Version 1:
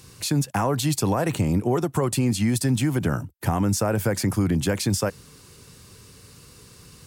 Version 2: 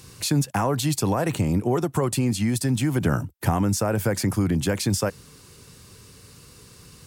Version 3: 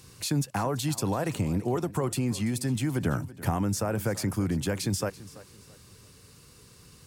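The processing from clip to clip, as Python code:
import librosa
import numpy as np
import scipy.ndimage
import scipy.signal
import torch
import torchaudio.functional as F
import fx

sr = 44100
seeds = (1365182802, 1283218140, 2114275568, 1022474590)

y1 = fx.rider(x, sr, range_db=10, speed_s=0.5)
y2 = fx.echo_feedback(y1, sr, ms=335, feedback_pct=31, wet_db=-18)
y2 = y2 * librosa.db_to_amplitude(-5.5)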